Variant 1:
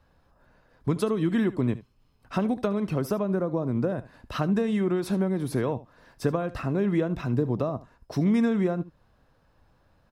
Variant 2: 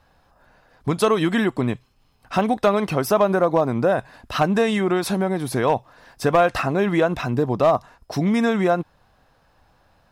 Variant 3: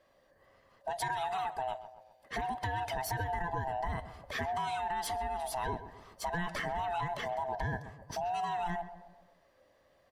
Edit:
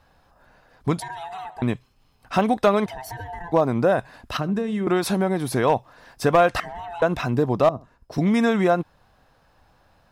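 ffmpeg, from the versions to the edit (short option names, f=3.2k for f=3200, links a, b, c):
-filter_complex "[2:a]asplit=3[a][b][c];[0:a]asplit=2[d][e];[1:a]asplit=6[f][g][h][i][j][k];[f]atrim=end=1.002[l];[a]atrim=start=0.998:end=1.622[m];[g]atrim=start=1.618:end=2.862[n];[b]atrim=start=2.858:end=3.522[o];[h]atrim=start=3.518:end=4.372[p];[d]atrim=start=4.368:end=4.872[q];[i]atrim=start=4.868:end=6.602[r];[c]atrim=start=6.598:end=7.022[s];[j]atrim=start=7.018:end=7.692[t];[e]atrim=start=7.688:end=8.182[u];[k]atrim=start=8.178[v];[l][m]acrossfade=d=0.004:c1=hsin:c2=hsin[w];[w][n]acrossfade=d=0.004:c1=hsin:c2=hsin[x];[x][o]acrossfade=d=0.004:c1=hsin:c2=hsin[y];[y][p]acrossfade=d=0.004:c1=hsin:c2=hsin[z];[z][q]acrossfade=d=0.004:c1=hsin:c2=hsin[aa];[aa][r]acrossfade=d=0.004:c1=hsin:c2=hsin[ab];[ab][s]acrossfade=d=0.004:c1=hsin:c2=hsin[ac];[ac][t]acrossfade=d=0.004:c1=hsin:c2=hsin[ad];[ad][u]acrossfade=d=0.004:c1=hsin:c2=hsin[ae];[ae][v]acrossfade=d=0.004:c1=hsin:c2=hsin"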